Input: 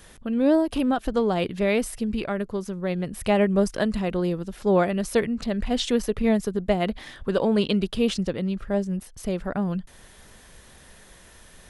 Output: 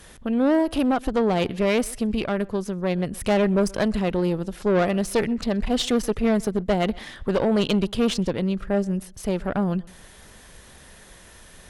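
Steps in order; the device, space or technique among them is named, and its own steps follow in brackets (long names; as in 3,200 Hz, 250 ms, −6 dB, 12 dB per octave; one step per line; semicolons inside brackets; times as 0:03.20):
rockabilly slapback (tube saturation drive 20 dB, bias 0.55; tape delay 127 ms, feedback 23%, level −22.5 dB, low-pass 3,200 Hz)
level +5 dB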